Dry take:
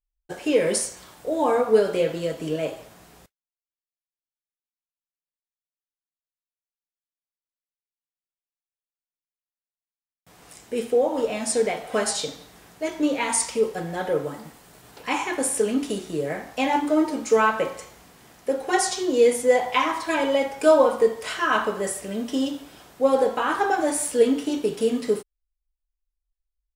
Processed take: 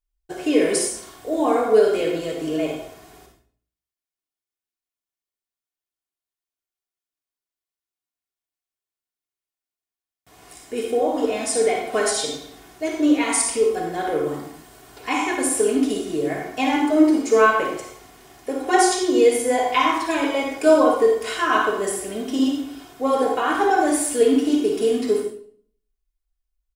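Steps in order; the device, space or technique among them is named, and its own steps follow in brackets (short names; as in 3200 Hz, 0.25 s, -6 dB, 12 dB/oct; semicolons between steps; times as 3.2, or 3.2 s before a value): microphone above a desk (comb 2.8 ms, depth 51%; reverb RT60 0.55 s, pre-delay 46 ms, DRR 2 dB)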